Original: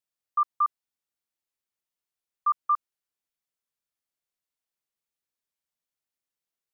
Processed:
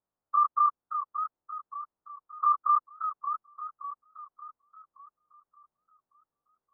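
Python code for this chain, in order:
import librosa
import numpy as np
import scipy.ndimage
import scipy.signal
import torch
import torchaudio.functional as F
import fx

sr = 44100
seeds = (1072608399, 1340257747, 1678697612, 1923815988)

y = fx.spec_dilate(x, sr, span_ms=60)
y = scipy.signal.sosfilt(scipy.signal.butter(4, 1200.0, 'lowpass', fs=sr, output='sos'), y)
y = fx.dynamic_eq(y, sr, hz=900.0, q=1.1, threshold_db=-37.0, ratio=4.0, max_db=-4)
y = fx.echo_warbled(y, sr, ms=575, feedback_pct=46, rate_hz=2.8, cents=120, wet_db=-8.5)
y = F.gain(torch.from_numpy(y), 5.5).numpy()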